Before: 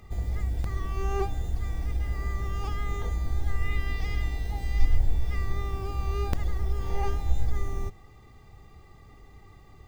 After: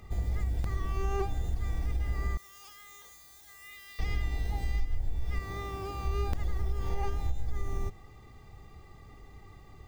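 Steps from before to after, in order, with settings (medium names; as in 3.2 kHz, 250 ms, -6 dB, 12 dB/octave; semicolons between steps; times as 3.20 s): 2.37–3.99 s: differentiator; 5.39–6.05 s: high-pass 160 Hz 6 dB/octave; compression 6:1, threshold -25 dBFS, peak gain reduction 12.5 dB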